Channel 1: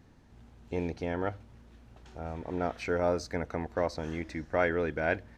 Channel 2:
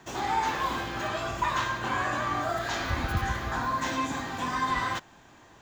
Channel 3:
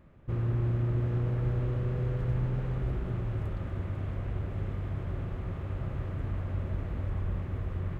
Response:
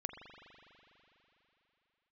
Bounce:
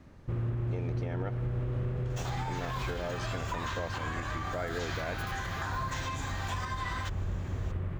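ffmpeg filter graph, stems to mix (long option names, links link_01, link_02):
-filter_complex "[0:a]asoftclip=type=tanh:threshold=-16dB,volume=-6dB[link_01];[1:a]highpass=frequency=1000:poles=1,acompressor=threshold=-36dB:ratio=2.5,adelay=2100,volume=-1.5dB[link_02];[2:a]volume=-5.5dB[link_03];[link_01][link_02][link_03]amix=inputs=3:normalize=0,acontrast=75,alimiter=level_in=1dB:limit=-24dB:level=0:latency=1:release=293,volume=-1dB"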